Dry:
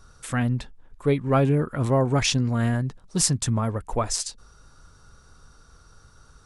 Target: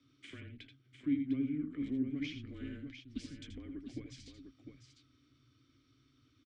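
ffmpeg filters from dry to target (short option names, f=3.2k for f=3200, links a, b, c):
-filter_complex "[0:a]lowpass=6.4k,afreqshift=-140,asubboost=boost=3:cutoff=90,acrossover=split=210[a][b];[b]acompressor=threshold=-36dB:ratio=6[c];[a][c]amix=inputs=2:normalize=0,asplit=3[d][e][f];[d]bandpass=f=270:t=q:w=8,volume=0dB[g];[e]bandpass=f=2.29k:t=q:w=8,volume=-6dB[h];[f]bandpass=f=3.01k:t=q:w=8,volume=-9dB[i];[g][h][i]amix=inputs=3:normalize=0,lowshelf=f=130:g=-7.5,aecho=1:1:80|87|702:0.355|0.211|0.398,volume=4dB"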